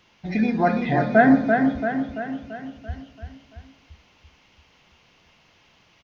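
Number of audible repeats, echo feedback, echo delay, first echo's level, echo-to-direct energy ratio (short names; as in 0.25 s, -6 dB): 6, 54%, 0.338 s, -5.0 dB, -3.5 dB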